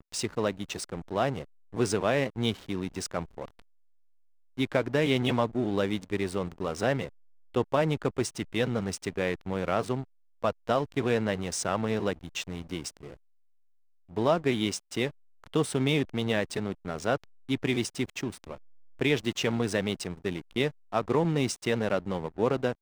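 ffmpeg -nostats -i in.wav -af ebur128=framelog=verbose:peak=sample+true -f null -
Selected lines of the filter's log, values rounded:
Integrated loudness:
  I:         -29.9 LUFS
  Threshold: -40.2 LUFS
Loudness range:
  LRA:         2.8 LU
  Threshold: -50.5 LUFS
  LRA low:   -32.1 LUFS
  LRA high:  -29.2 LUFS
Sample peak:
  Peak:      -10.4 dBFS
True peak:
  Peak:      -10.3 dBFS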